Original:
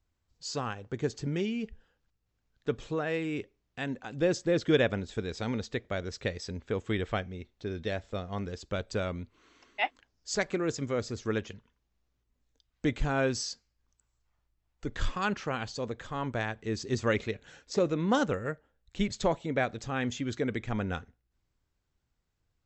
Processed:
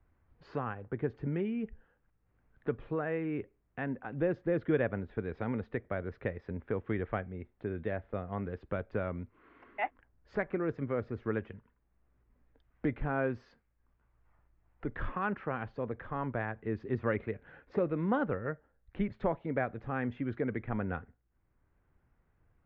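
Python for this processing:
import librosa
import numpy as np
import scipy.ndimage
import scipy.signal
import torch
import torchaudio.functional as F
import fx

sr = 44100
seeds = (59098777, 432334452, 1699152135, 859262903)

y = scipy.signal.sosfilt(scipy.signal.butter(4, 2000.0, 'lowpass', fs=sr, output='sos'), x)
y = fx.band_squash(y, sr, depth_pct=40)
y = y * 10.0 ** (-2.5 / 20.0)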